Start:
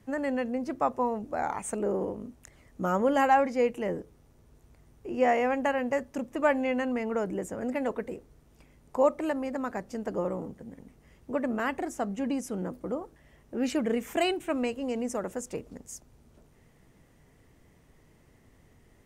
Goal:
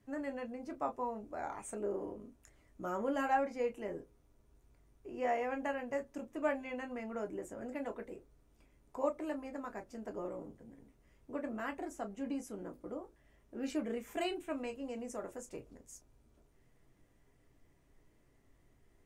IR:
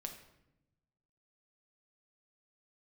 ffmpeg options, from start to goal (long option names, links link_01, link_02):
-filter_complex "[1:a]atrim=start_sample=2205,atrim=end_sample=3528,asetrate=88200,aresample=44100[link_01];[0:a][link_01]afir=irnorm=-1:irlink=0,volume=-1dB"